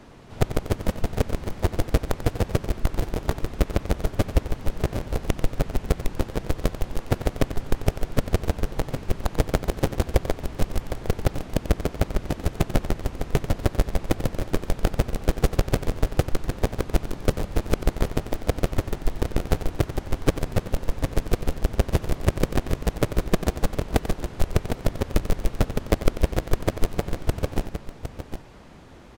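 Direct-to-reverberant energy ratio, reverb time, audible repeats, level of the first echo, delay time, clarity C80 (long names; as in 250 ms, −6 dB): no reverb audible, no reverb audible, 2, −12.0 dB, 91 ms, no reverb audible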